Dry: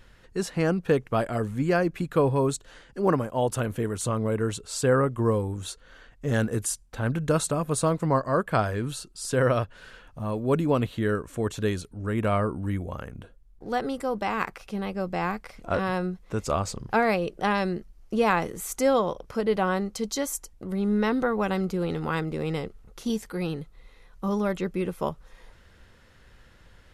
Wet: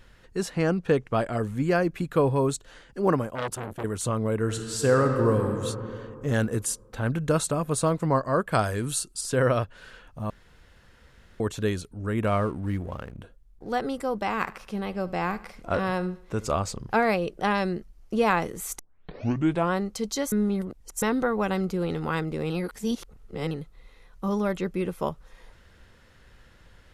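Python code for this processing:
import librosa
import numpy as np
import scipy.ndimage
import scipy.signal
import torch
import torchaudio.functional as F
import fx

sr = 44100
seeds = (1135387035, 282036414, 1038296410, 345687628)

y = fx.lowpass(x, sr, hz=9200.0, slope=12, at=(0.54, 1.4))
y = fx.transformer_sat(y, sr, knee_hz=1500.0, at=(3.35, 3.84))
y = fx.reverb_throw(y, sr, start_s=4.38, length_s=1.09, rt60_s=2.7, drr_db=3.5)
y = fx.peak_eq(y, sr, hz=9500.0, db=12.0, octaves=1.4, at=(8.52, 9.21))
y = fx.backlash(y, sr, play_db=-44.0, at=(12.27, 13.19))
y = fx.echo_feedback(y, sr, ms=74, feedback_pct=47, wet_db=-18.5, at=(14.39, 16.5), fade=0.02)
y = fx.edit(y, sr, fx.room_tone_fill(start_s=10.3, length_s=1.1),
    fx.tape_start(start_s=18.79, length_s=0.93),
    fx.reverse_span(start_s=20.32, length_s=0.7),
    fx.reverse_span(start_s=22.5, length_s=1.01), tone=tone)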